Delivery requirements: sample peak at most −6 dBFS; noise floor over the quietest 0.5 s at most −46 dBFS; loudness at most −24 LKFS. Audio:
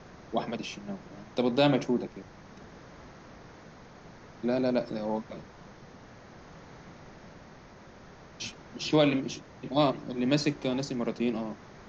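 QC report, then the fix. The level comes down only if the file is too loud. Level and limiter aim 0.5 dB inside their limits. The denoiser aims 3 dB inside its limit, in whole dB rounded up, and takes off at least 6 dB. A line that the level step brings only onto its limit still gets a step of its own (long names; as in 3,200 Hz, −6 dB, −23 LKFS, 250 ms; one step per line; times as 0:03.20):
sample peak −12.0 dBFS: in spec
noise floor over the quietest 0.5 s −51 dBFS: in spec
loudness −30.0 LKFS: in spec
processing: no processing needed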